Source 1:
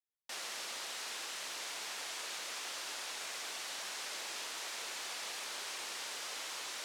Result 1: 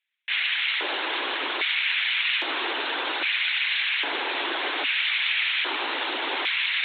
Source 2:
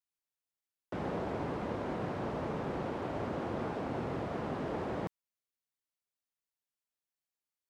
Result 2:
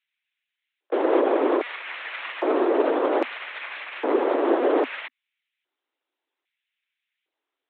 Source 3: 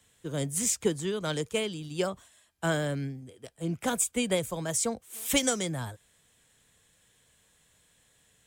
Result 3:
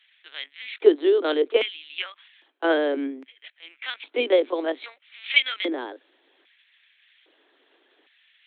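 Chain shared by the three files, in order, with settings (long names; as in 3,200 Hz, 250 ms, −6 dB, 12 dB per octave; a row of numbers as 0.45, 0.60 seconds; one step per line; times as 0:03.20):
linear-prediction vocoder at 8 kHz pitch kept
auto-filter high-pass square 0.62 Hz 350–2,200 Hz
Butterworth high-pass 250 Hz 96 dB per octave
loudness normalisation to −24 LKFS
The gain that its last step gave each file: +17.0, +14.0, +6.5 decibels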